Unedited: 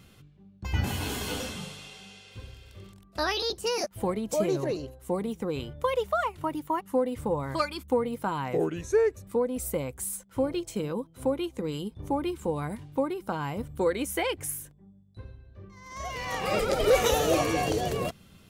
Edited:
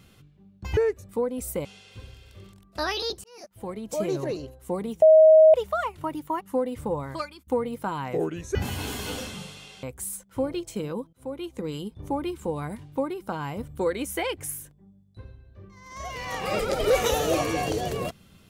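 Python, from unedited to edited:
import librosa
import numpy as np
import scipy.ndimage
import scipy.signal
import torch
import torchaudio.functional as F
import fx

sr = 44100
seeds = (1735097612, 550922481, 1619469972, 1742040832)

y = fx.edit(x, sr, fx.swap(start_s=0.77, length_s=1.28, other_s=8.95, other_length_s=0.88),
    fx.fade_in_span(start_s=3.64, length_s=0.91),
    fx.bleep(start_s=5.42, length_s=0.52, hz=631.0, db=-10.0),
    fx.fade_out_to(start_s=7.38, length_s=0.49, floor_db=-21.5),
    fx.fade_in_from(start_s=11.13, length_s=0.45, floor_db=-22.0), tone=tone)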